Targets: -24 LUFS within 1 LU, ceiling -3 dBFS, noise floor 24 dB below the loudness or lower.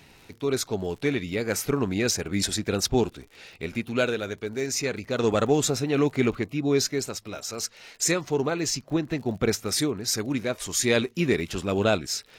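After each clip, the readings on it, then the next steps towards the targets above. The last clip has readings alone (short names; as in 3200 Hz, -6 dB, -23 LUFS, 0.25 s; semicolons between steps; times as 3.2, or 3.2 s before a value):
ticks 37/s; loudness -26.0 LUFS; peak -9.0 dBFS; loudness target -24.0 LUFS
-> de-click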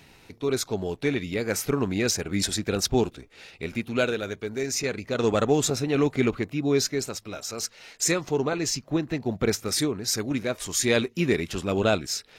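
ticks 0.32/s; loudness -26.5 LUFS; peak -9.0 dBFS; loudness target -24.0 LUFS
-> gain +2.5 dB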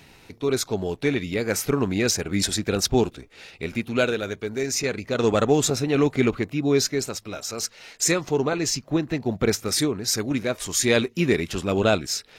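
loudness -24.0 LUFS; peak -6.5 dBFS; noise floor -52 dBFS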